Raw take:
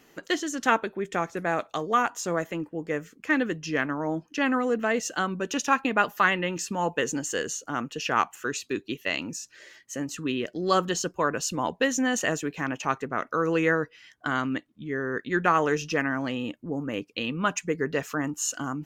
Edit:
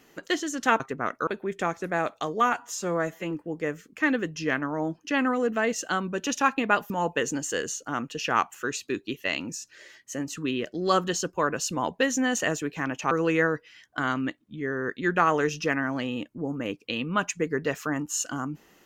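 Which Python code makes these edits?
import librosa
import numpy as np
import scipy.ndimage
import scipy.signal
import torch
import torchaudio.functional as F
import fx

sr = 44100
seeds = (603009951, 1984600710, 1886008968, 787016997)

y = fx.edit(x, sr, fx.stretch_span(start_s=2.06, length_s=0.52, factor=1.5),
    fx.cut(start_s=6.17, length_s=0.54),
    fx.move(start_s=12.92, length_s=0.47, to_s=0.8), tone=tone)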